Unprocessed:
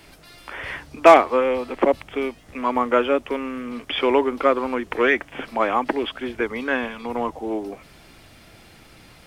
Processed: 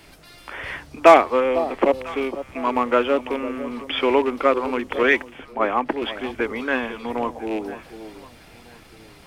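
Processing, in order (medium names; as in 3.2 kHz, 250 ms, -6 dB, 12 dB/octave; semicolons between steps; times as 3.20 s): rattle on loud lows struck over -30 dBFS, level -25 dBFS; echo whose repeats swap between lows and highs 500 ms, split 920 Hz, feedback 51%, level -12.5 dB; 5.03–6.02 s: three bands expanded up and down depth 100%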